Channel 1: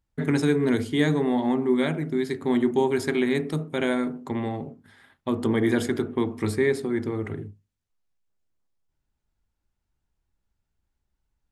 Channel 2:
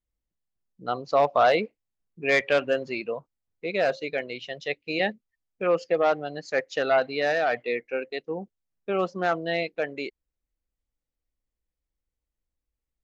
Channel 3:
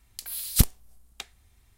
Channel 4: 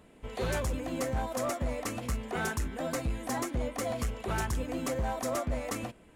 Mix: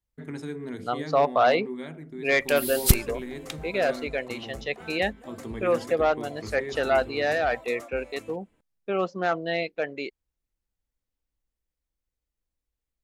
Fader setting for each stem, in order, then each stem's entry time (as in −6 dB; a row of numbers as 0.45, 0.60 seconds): −13.5, −0.5, +1.0, −11.0 decibels; 0.00, 0.00, 2.30, 2.45 seconds